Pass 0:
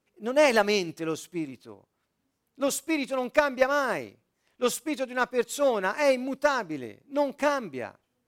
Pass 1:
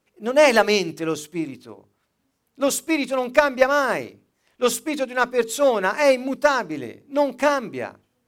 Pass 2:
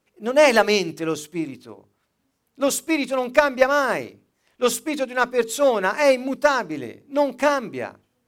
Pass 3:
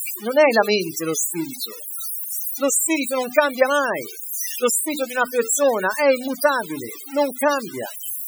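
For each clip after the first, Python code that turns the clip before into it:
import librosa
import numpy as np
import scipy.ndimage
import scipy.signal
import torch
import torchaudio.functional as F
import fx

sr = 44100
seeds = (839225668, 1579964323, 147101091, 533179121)

y1 = fx.hum_notches(x, sr, base_hz=50, count=9)
y1 = F.gain(torch.from_numpy(y1), 6.0).numpy()
y2 = y1
y3 = y2 + 0.5 * 10.0 ** (-8.0 / 20.0) * np.diff(np.sign(y2), prepend=np.sign(y2[:1]))
y3 = fx.spec_topn(y3, sr, count=32)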